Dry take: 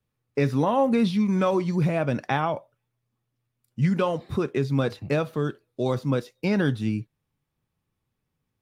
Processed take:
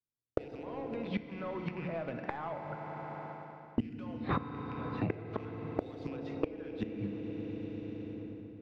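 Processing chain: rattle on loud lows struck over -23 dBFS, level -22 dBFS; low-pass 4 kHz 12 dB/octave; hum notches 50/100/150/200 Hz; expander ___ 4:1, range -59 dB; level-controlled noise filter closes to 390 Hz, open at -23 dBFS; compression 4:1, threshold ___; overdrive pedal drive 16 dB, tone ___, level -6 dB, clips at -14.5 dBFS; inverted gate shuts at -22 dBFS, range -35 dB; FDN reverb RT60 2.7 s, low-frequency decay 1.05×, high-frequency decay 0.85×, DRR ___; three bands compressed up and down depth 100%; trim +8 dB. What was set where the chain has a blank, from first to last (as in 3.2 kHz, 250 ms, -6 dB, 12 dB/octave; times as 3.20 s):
-44 dBFS, -26 dBFS, 2 kHz, 7 dB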